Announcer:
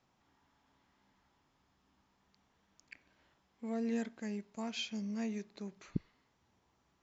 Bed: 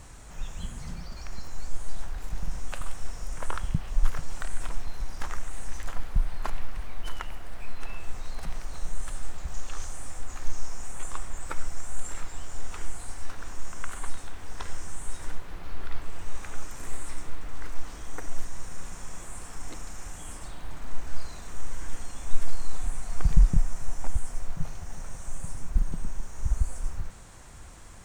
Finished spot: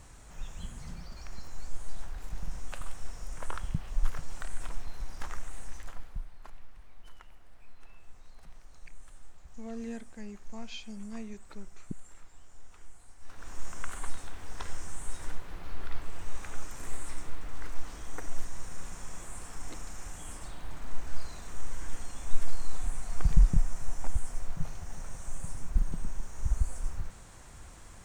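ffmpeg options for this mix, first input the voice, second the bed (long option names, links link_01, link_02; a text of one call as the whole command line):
ffmpeg -i stem1.wav -i stem2.wav -filter_complex "[0:a]adelay=5950,volume=-4dB[link_01];[1:a]volume=10dB,afade=type=out:start_time=5.5:duration=0.81:silence=0.237137,afade=type=in:start_time=13.19:duration=0.43:silence=0.177828[link_02];[link_01][link_02]amix=inputs=2:normalize=0" out.wav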